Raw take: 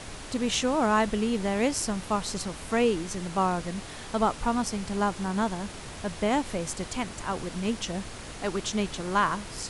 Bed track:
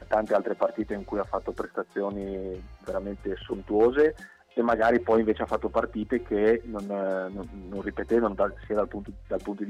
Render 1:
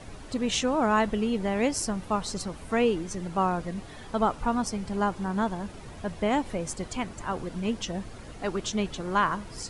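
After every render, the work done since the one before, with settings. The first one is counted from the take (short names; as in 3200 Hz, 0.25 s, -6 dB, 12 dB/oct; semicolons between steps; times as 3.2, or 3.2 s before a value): denoiser 10 dB, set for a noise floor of -41 dBFS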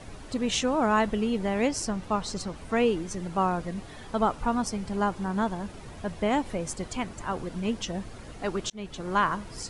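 1.67–2.76 LPF 8300 Hz; 8.7–9.21 fade in equal-power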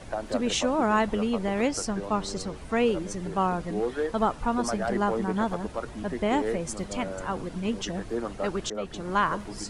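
add bed track -8 dB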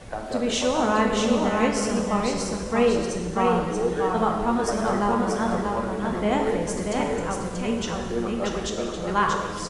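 on a send: echo 0.634 s -4 dB; on the sum: non-linear reverb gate 0.47 s falling, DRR 1.5 dB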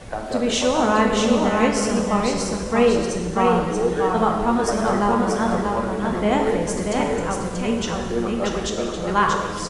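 gain +3.5 dB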